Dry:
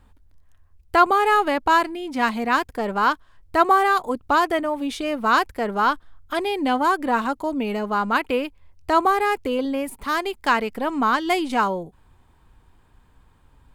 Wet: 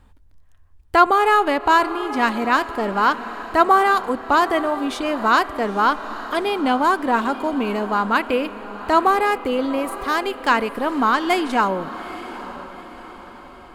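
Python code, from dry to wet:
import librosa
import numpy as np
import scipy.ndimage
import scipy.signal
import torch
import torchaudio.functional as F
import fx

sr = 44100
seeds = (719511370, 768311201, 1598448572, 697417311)

p1 = fx.high_shelf(x, sr, hz=12000.0, db=-4.0)
p2 = p1 + fx.echo_diffused(p1, sr, ms=852, feedback_pct=47, wet_db=-14.0, dry=0)
p3 = fx.rev_spring(p2, sr, rt60_s=3.4, pass_ms=(31,), chirp_ms=55, drr_db=17.5)
y = p3 * librosa.db_to_amplitude(2.0)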